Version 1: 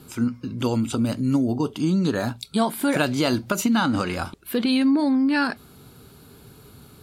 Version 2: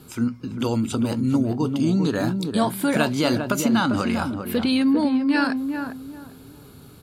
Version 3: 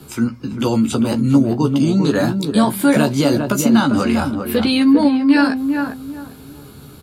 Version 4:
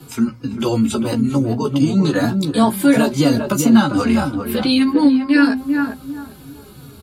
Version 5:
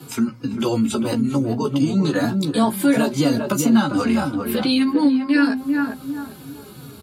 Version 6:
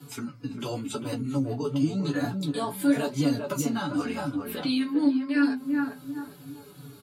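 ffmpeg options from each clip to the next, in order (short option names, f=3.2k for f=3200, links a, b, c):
-filter_complex "[0:a]asplit=2[a][b];[b]adelay=398,lowpass=f=1k:p=1,volume=-5dB,asplit=2[c][d];[d]adelay=398,lowpass=f=1k:p=1,volume=0.29,asplit=2[e][f];[f]adelay=398,lowpass=f=1k:p=1,volume=0.29,asplit=2[g][h];[h]adelay=398,lowpass=f=1k:p=1,volume=0.29[i];[a][c][e][g][i]amix=inputs=5:normalize=0"
-filter_complex "[0:a]acrossover=split=150|690|5500[a][b][c][d];[c]alimiter=limit=-19dB:level=0:latency=1:release=356[e];[a][b][e][d]amix=inputs=4:normalize=0,asplit=2[f][g];[g]adelay=14,volume=-5.5dB[h];[f][h]amix=inputs=2:normalize=0,volume=5.5dB"
-filter_complex "[0:a]asplit=2[a][b];[b]adelay=3.5,afreqshift=-2.8[c];[a][c]amix=inputs=2:normalize=1,volume=2.5dB"
-filter_complex "[0:a]highpass=110,asplit=2[a][b];[b]acompressor=threshold=-23dB:ratio=6,volume=2.5dB[c];[a][c]amix=inputs=2:normalize=0,volume=-6dB"
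-af "aecho=1:1:6.9:0.73,flanger=delay=7.7:depth=9.3:regen=-51:speed=0.92:shape=sinusoidal,volume=-6.5dB"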